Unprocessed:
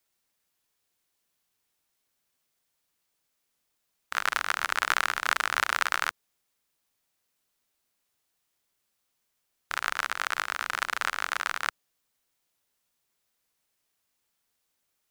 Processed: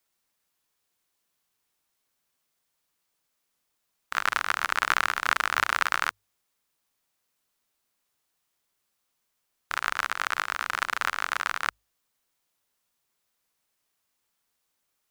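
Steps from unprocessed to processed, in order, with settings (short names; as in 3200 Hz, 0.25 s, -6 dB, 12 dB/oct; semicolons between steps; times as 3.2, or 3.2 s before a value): tracing distortion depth 0.042 ms; bell 1100 Hz +2.5 dB; notches 50/100 Hz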